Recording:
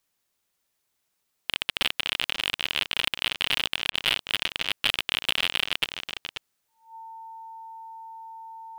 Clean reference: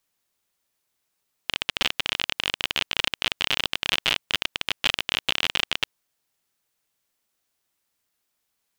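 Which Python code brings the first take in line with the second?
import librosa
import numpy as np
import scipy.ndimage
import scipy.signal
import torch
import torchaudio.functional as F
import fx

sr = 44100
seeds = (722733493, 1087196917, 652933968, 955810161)

y = fx.fix_declip(x, sr, threshold_db=-9.0)
y = fx.notch(y, sr, hz=900.0, q=30.0)
y = fx.fix_interpolate(y, sr, at_s=(3.9,), length_ms=41.0)
y = fx.fix_echo_inverse(y, sr, delay_ms=535, level_db=-11.0)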